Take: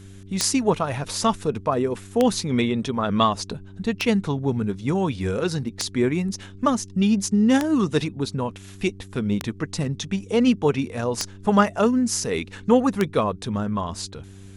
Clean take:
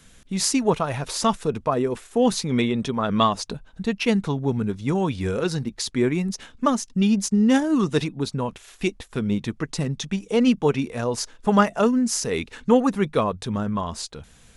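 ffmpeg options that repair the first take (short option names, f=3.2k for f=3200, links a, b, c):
-af "adeclick=t=4,bandreject=f=97.2:t=h:w=4,bandreject=f=194.4:t=h:w=4,bandreject=f=291.6:t=h:w=4,bandreject=f=388.8:t=h:w=4"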